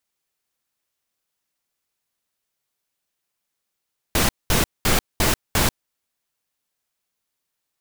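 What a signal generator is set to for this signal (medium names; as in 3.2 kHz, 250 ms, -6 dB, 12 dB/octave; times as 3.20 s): noise bursts pink, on 0.14 s, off 0.21 s, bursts 5, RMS -18 dBFS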